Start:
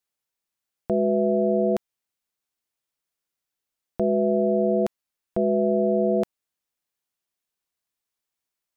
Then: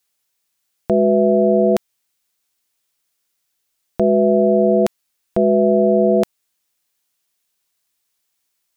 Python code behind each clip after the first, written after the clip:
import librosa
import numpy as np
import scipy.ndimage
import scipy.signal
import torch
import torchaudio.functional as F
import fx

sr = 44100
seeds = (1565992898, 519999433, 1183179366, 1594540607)

y = fx.high_shelf(x, sr, hz=2100.0, db=7.5)
y = y * librosa.db_to_amplitude(7.0)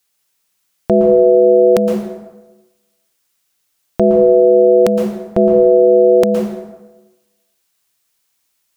y = fx.rev_plate(x, sr, seeds[0], rt60_s=1.1, hf_ratio=0.65, predelay_ms=105, drr_db=2.5)
y = y * librosa.db_to_amplitude(4.0)